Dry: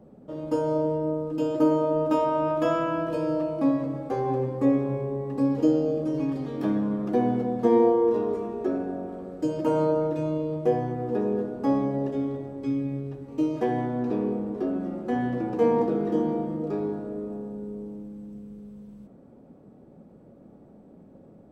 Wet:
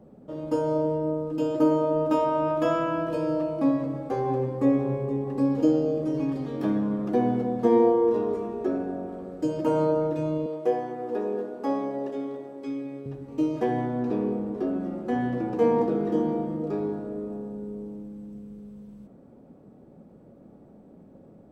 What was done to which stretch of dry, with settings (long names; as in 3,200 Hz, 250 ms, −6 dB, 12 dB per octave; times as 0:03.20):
0:04.32–0:04.77: delay throw 470 ms, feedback 60%, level −11 dB
0:10.46–0:13.06: high-pass filter 340 Hz